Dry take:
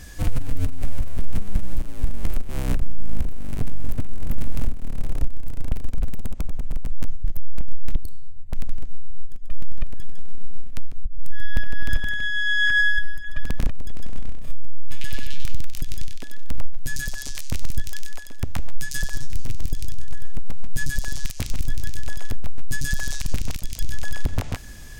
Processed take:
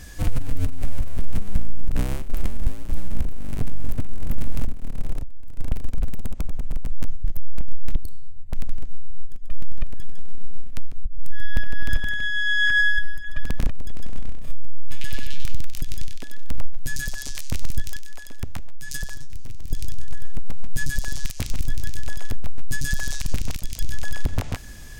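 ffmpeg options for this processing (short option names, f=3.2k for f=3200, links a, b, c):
-filter_complex "[0:a]asplit=3[a][b][c];[a]afade=t=out:st=4.65:d=0.02[d];[b]aeval=exprs='(tanh(3.55*val(0)+0.7)-tanh(0.7))/3.55':c=same,afade=t=in:st=4.65:d=0.02,afade=t=out:st=5.58:d=0.02[e];[c]afade=t=in:st=5.58:d=0.02[f];[d][e][f]amix=inputs=3:normalize=0,asettb=1/sr,asplit=3[g][h][i];[g]atrim=end=17.964[j];[h]atrim=start=17.96:end=19.71,asetpts=PTS-STARTPTS,afade=t=in:d=0.004:c=qsin,afade=t=out:st=1.746:d=0.004:c=qsin,acompressor=threshold=-22dB:ratio=4:attack=3.2:release=140:knee=1:detection=peak[k];[i]atrim=start=19.706[l];[j][k]acrossfade=d=0.004:c1=hsin:c2=qsin[m];[m][l]acrossfade=d=0.004:c1=qsin:c2=hsin,asplit=3[n][o][p];[n]atrim=end=1.572[q];[o]atrim=start=1.568:end=3.142,asetpts=PTS-STARTPTS,areverse[r];[p]atrim=start=3.138[s];[q][r]acrossfade=d=0.004:c1=hsin:c2=hsin[t];[t][s]acrossfade=d=0.004:c1=hsin:c2=hsin"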